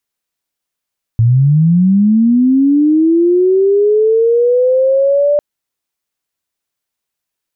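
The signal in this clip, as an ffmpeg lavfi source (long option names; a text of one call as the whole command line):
ffmpeg -f lavfi -i "aevalsrc='pow(10,(-6-2*t/4.2)/20)*sin(2*PI*(110*t+480*t*t/(2*4.2)))':duration=4.2:sample_rate=44100" out.wav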